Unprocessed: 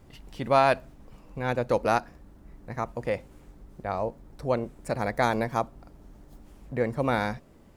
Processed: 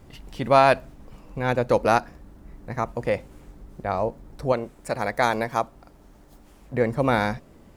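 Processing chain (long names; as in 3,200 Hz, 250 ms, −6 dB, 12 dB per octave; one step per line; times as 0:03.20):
0:04.52–0:06.74: low-shelf EQ 370 Hz −7.5 dB
level +4.5 dB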